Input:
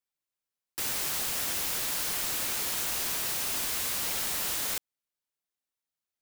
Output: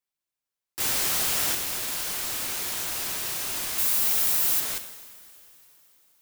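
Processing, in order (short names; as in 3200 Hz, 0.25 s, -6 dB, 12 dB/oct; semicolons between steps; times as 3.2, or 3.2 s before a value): 0.8–1.55 sample leveller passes 2; 3.78–4.6 high shelf 9400 Hz +11 dB; reverb, pre-delay 3 ms, DRR 7.5 dB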